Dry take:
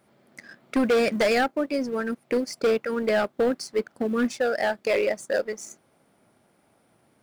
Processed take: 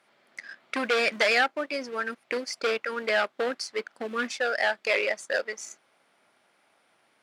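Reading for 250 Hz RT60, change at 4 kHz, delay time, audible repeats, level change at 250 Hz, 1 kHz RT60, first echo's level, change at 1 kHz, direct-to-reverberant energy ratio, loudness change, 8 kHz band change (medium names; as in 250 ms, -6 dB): no reverb, +3.5 dB, no echo, no echo, -11.5 dB, no reverb, no echo, -0.5 dB, no reverb, -2.0 dB, -0.5 dB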